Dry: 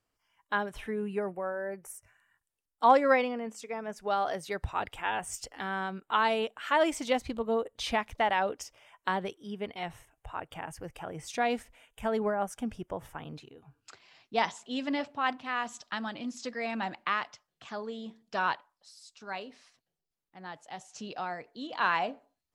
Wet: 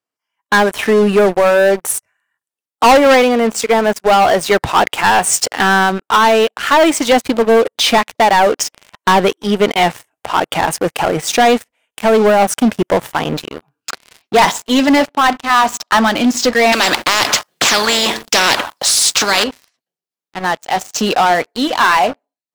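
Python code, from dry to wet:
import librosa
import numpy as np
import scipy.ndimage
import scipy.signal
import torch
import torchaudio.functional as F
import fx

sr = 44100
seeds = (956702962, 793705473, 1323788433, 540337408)

y = fx.peak_eq(x, sr, hz=920.0, db=7.0, octaves=1.4, at=(15.5, 16.04))
y = fx.spectral_comp(y, sr, ratio=4.0, at=(16.72, 19.44))
y = scipy.signal.sosfilt(scipy.signal.butter(2, 210.0, 'highpass', fs=sr, output='sos'), y)
y = fx.rider(y, sr, range_db=4, speed_s=0.5)
y = fx.leveller(y, sr, passes=5)
y = y * librosa.db_to_amplitude(5.5)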